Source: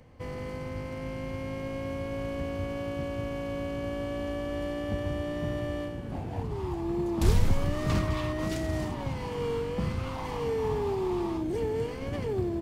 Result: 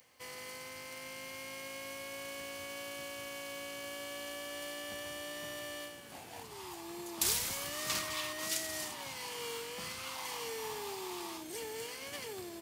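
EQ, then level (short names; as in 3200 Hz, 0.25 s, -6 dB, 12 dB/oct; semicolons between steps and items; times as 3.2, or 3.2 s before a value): differentiator; +10.5 dB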